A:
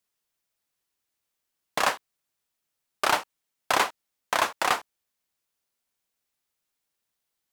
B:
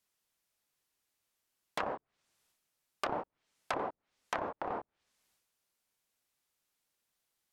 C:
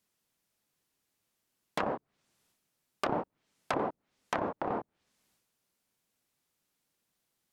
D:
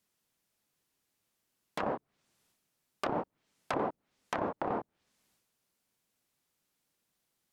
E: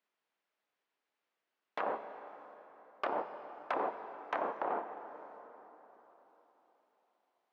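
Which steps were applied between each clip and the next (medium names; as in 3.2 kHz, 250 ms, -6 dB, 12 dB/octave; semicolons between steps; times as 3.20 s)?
peak limiter -14.5 dBFS, peak gain reduction 6 dB; transient shaper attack -5 dB, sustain +7 dB; low-pass that closes with the level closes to 580 Hz, closed at -28.5 dBFS
peaking EQ 190 Hz +8.5 dB 2.3 oct; trim +1.5 dB
peak limiter -20 dBFS, peak gain reduction 4.5 dB
band-pass 480–2500 Hz; plate-style reverb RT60 4.1 s, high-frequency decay 0.6×, DRR 8 dB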